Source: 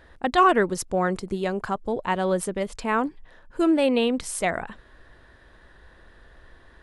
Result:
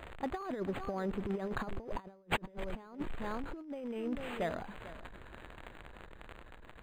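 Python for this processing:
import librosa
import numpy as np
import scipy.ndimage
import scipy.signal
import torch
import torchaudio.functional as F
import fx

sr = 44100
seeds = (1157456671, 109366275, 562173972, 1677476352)

p1 = x + 0.5 * 10.0 ** (-32.0 / 20.0) * np.sign(x)
p2 = fx.doppler_pass(p1, sr, speed_mps=15, closest_m=4.6, pass_at_s=2.36)
p3 = fx.high_shelf(p2, sr, hz=2200.0, db=-11.5)
p4 = fx.dmg_crackle(p3, sr, seeds[0], per_s=340.0, level_db=-48.0)
p5 = p4 + fx.echo_single(p4, sr, ms=445, db=-16.5, dry=0)
p6 = fx.over_compress(p5, sr, threshold_db=-38.0, ratio=-0.5)
p7 = fx.high_shelf(p6, sr, hz=5100.0, db=10.0)
y = np.interp(np.arange(len(p7)), np.arange(len(p7))[::8], p7[::8])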